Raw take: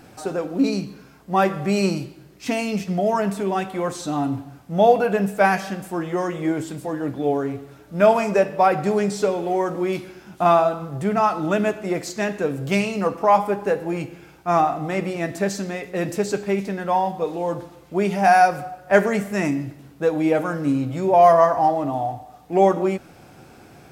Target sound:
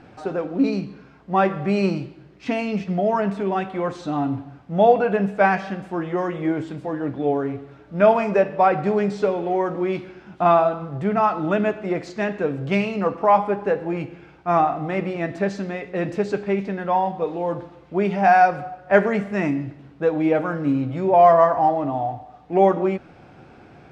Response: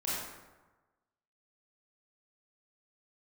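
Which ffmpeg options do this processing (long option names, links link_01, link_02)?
-af "lowpass=3100"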